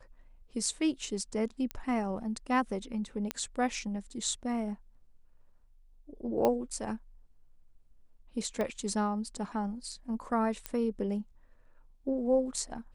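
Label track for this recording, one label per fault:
1.710000	1.710000	pop -20 dBFS
3.310000	3.310000	pop -15 dBFS
6.450000	6.450000	pop -15 dBFS
8.610000	8.610000	pop -20 dBFS
10.660000	10.660000	pop -17 dBFS

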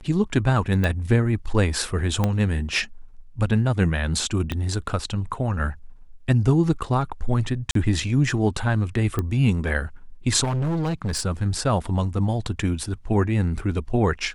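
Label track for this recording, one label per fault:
0.840000	0.840000	pop -11 dBFS
2.240000	2.240000	pop -9 dBFS
4.520000	4.520000	pop -13 dBFS
7.710000	7.750000	dropout 43 ms
9.190000	9.190000	pop -12 dBFS
10.430000	11.220000	clipped -21.5 dBFS

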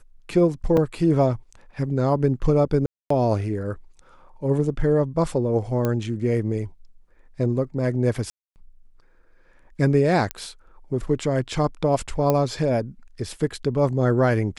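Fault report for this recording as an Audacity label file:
0.770000	0.770000	dropout 3.9 ms
2.860000	3.100000	dropout 244 ms
5.850000	5.850000	pop -11 dBFS
8.300000	8.560000	dropout 259 ms
10.310000	10.310000	pop -10 dBFS
12.300000	12.300000	pop -8 dBFS

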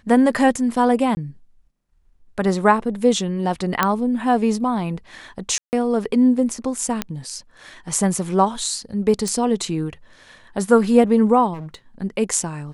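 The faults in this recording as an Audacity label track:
1.150000	1.170000	dropout 20 ms
3.830000	3.830000	pop -2 dBFS
5.580000	5.730000	dropout 149 ms
7.020000	7.020000	pop -7 dBFS
9.280000	9.280000	pop -11 dBFS
11.530000	11.750000	clipped -29 dBFS

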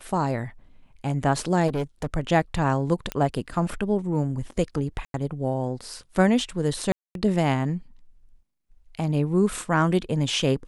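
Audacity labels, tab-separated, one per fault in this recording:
1.670000	2.070000	clipped -22.5 dBFS
3.120000	3.120000	pop -13 dBFS
5.050000	5.140000	dropout 92 ms
6.920000	7.150000	dropout 232 ms

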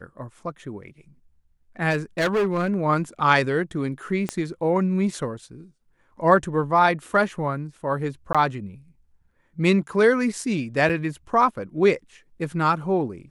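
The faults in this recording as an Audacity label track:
1.900000	2.700000	clipped -18 dBFS
4.290000	4.290000	pop -12 dBFS
8.330000	8.350000	dropout 16 ms
10.890000	10.900000	dropout 6.7 ms

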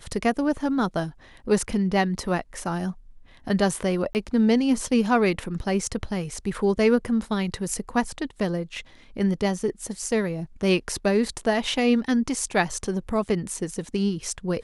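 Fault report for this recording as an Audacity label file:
4.130000	4.150000	dropout 19 ms

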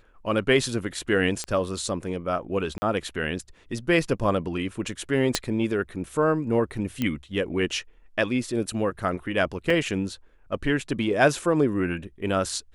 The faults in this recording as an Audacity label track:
1.440000	1.440000	pop -16 dBFS
2.780000	2.820000	dropout 40 ms
5.350000	5.350000	pop -6 dBFS
7.020000	7.020000	pop -13 dBFS
9.700000	9.700000	dropout 3.5 ms

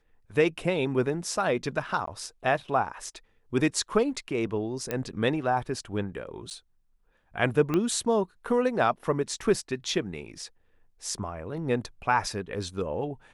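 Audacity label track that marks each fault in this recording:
2.060000	2.070000	dropout 14 ms
4.910000	4.910000	pop -14 dBFS
6.500000	6.510000	dropout 8.8 ms
7.740000	7.740000	pop -14 dBFS

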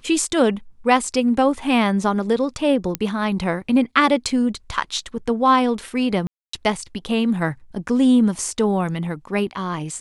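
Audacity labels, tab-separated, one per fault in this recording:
2.950000	2.950000	pop -6 dBFS
6.270000	6.530000	dropout 264 ms

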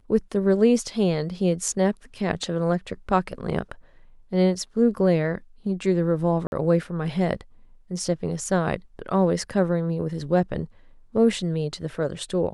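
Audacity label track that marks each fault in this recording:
6.470000	6.520000	dropout 51 ms

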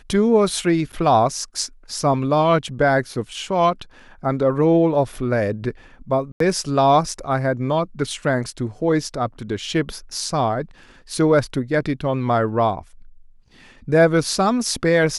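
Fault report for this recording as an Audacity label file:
0.920000	0.930000	dropout 8.1 ms
6.320000	6.400000	dropout 83 ms

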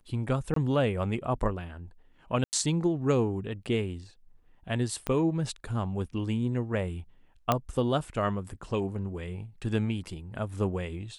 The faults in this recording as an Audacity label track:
0.540000	0.560000	dropout 23 ms
2.440000	2.530000	dropout 89 ms
5.070000	5.070000	pop -16 dBFS
7.520000	7.520000	pop -10 dBFS

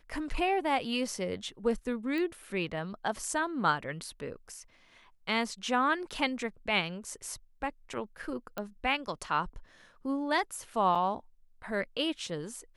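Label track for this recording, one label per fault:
2.180000	2.180000	pop -24 dBFS
8.580000	8.580000	pop -21 dBFS
10.950000	10.950000	dropout 4.8 ms

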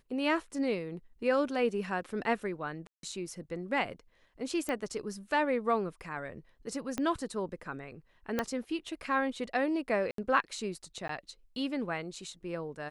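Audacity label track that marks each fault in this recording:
2.870000	3.030000	dropout 162 ms
4.690000	4.690000	pop -21 dBFS
6.980000	6.980000	pop -19 dBFS
8.390000	8.390000	pop -15 dBFS
10.110000	10.180000	dropout 73 ms
11.080000	11.090000	dropout 13 ms

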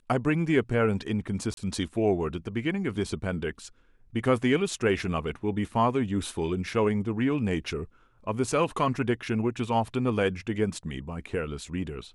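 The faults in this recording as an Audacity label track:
1.540000	1.570000	dropout 32 ms

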